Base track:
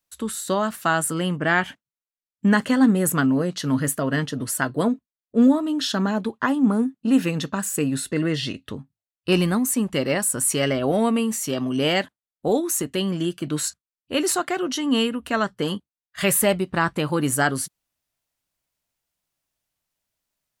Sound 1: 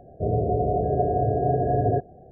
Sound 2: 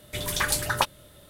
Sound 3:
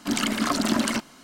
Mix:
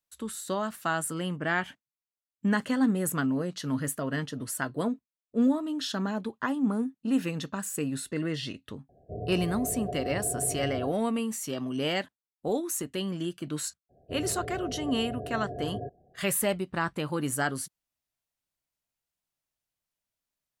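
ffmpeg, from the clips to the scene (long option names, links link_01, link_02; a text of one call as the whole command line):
ffmpeg -i bed.wav -i cue0.wav -filter_complex "[1:a]asplit=2[link_01][link_02];[0:a]volume=-8dB[link_03];[link_01]atrim=end=2.31,asetpts=PTS-STARTPTS,volume=-13dB,afade=type=in:duration=0.004:curve=hsin,afade=type=out:start_time=2.306:duration=0.004:curve=hsin,adelay=8890[link_04];[link_02]atrim=end=2.31,asetpts=PTS-STARTPTS,volume=-14.5dB,afade=type=in:duration=0.02,afade=type=out:start_time=2.29:duration=0.02,adelay=13890[link_05];[link_03][link_04][link_05]amix=inputs=3:normalize=0" out.wav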